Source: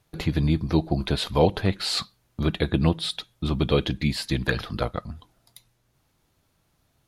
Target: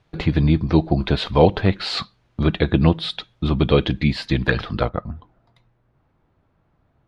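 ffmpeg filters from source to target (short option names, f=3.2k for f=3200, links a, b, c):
-af "asetnsamples=n=441:p=0,asendcmd='4.89 lowpass f 1500',lowpass=3.6k,volume=5.5dB"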